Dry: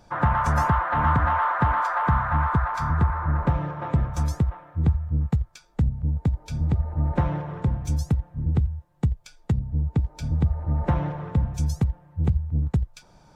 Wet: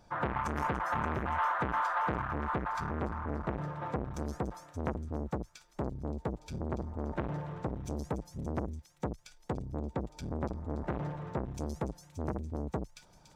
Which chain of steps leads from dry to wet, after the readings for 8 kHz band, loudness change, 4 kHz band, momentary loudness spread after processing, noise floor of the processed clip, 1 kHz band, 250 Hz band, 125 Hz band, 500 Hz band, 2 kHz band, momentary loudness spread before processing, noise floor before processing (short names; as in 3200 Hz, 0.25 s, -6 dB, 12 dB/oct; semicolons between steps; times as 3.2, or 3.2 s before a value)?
n/a, -11.5 dB, -7.0 dB, 9 LU, -61 dBFS, -9.5 dB, -8.0 dB, -15.5 dB, -2.5 dB, -8.5 dB, 6 LU, -55 dBFS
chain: on a send: thin delay 0.287 s, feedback 69%, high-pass 3100 Hz, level -7.5 dB; on the sum: core saturation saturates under 900 Hz; gain -6.5 dB